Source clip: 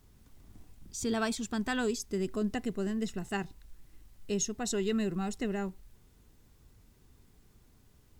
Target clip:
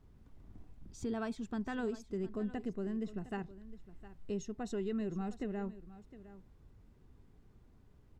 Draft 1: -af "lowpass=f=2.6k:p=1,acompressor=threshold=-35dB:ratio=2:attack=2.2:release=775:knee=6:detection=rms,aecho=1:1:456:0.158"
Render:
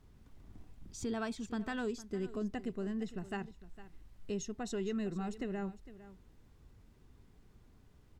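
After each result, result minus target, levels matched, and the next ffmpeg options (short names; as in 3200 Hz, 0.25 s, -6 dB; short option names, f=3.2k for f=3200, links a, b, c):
echo 0.254 s early; 2000 Hz band +3.0 dB
-af "lowpass=f=2.6k:p=1,acompressor=threshold=-35dB:ratio=2:attack=2.2:release=775:knee=6:detection=rms,aecho=1:1:710:0.158"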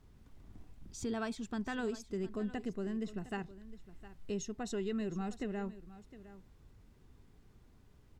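2000 Hz band +3.0 dB
-af "lowpass=f=1.1k:p=1,acompressor=threshold=-35dB:ratio=2:attack=2.2:release=775:knee=6:detection=rms,aecho=1:1:710:0.158"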